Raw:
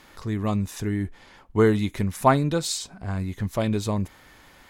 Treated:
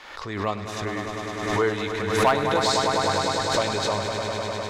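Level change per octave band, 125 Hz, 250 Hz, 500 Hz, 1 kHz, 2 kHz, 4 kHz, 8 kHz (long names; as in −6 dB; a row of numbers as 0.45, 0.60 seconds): −6.0, −5.0, +2.5, +4.5, +7.5, +8.5, +2.5 decibels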